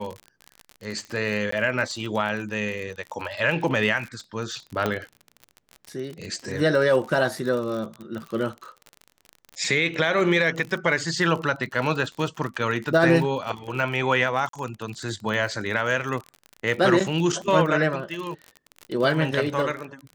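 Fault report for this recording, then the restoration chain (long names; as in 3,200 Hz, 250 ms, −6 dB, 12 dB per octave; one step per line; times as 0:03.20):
surface crackle 44 per second −30 dBFS
0:01.51–0:01.52: drop-out 14 ms
0:04.86: click −10 dBFS
0:14.49–0:14.53: drop-out 43 ms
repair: click removal
repair the gap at 0:01.51, 14 ms
repair the gap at 0:14.49, 43 ms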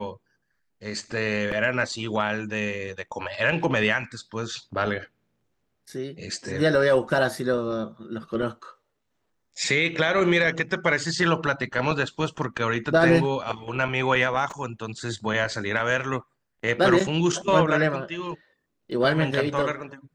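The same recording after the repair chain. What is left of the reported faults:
none of them is left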